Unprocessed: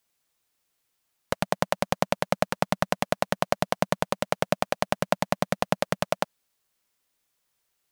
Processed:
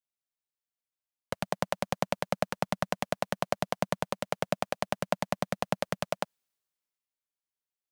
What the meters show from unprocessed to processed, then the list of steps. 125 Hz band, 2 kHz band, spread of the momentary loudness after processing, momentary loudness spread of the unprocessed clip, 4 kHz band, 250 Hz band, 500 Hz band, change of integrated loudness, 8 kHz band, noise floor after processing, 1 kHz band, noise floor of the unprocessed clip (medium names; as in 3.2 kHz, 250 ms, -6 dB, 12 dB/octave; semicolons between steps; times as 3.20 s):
-5.0 dB, -6.0 dB, 3 LU, 3 LU, -5.5 dB, -5.5 dB, -5.5 dB, -5.5 dB, -5.5 dB, under -85 dBFS, -5.5 dB, -77 dBFS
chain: three bands expanded up and down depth 40%; trim -5.5 dB